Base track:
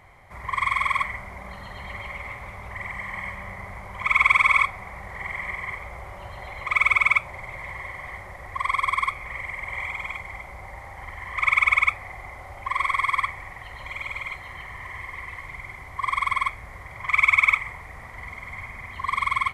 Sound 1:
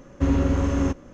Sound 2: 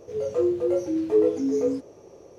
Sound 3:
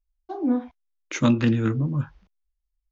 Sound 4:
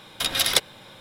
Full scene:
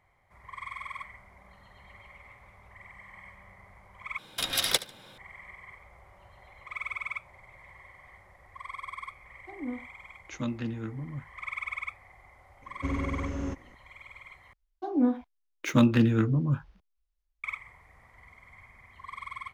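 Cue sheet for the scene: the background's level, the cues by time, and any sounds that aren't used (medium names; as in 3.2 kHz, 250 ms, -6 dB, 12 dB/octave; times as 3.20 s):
base track -16.5 dB
4.18 s: replace with 4 -5.5 dB + feedback delay 73 ms, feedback 27%, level -17.5 dB
9.18 s: add 3 -13.5 dB
12.62 s: add 1 -11 dB
14.53 s: replace with 3 -1.5 dB + median filter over 5 samples
not used: 2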